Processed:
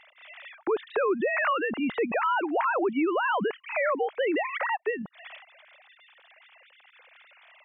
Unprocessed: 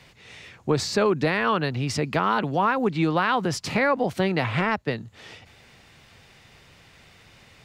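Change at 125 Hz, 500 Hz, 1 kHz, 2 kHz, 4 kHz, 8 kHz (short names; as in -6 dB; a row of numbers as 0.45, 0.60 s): -22.0 dB, -2.0 dB, -3.0 dB, -2.0 dB, -10.0 dB, under -40 dB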